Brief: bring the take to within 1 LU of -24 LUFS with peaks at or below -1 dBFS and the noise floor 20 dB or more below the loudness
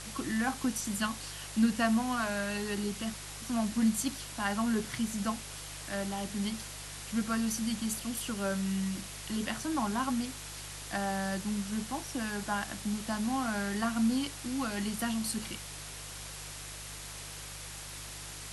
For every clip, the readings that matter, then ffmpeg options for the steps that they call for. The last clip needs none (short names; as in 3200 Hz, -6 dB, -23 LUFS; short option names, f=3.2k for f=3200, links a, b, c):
hum 50 Hz; harmonics up to 150 Hz; hum level -48 dBFS; noise floor -44 dBFS; noise floor target -54 dBFS; loudness -34.0 LUFS; peak -15.0 dBFS; loudness target -24.0 LUFS
-> -af "bandreject=f=50:t=h:w=4,bandreject=f=100:t=h:w=4,bandreject=f=150:t=h:w=4"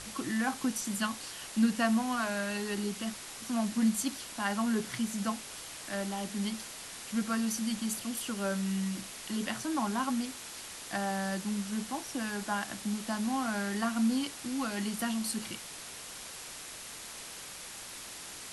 hum none; noise floor -45 dBFS; noise floor target -54 dBFS
-> -af "afftdn=nr=9:nf=-45"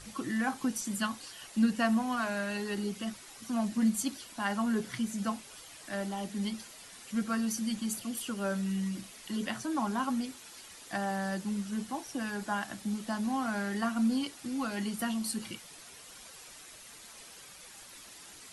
noise floor -51 dBFS; noise floor target -54 dBFS
-> -af "afftdn=nr=6:nf=-51"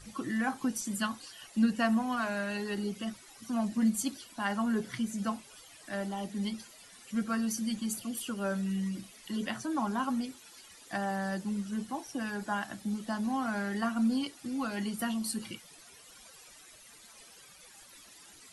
noise floor -55 dBFS; loudness -33.5 LUFS; peak -15.5 dBFS; loudness target -24.0 LUFS
-> -af "volume=9.5dB"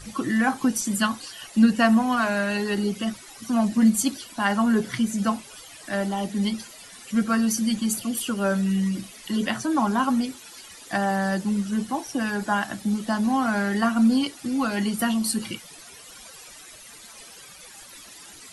loudness -24.0 LUFS; peak -6.0 dBFS; noise floor -45 dBFS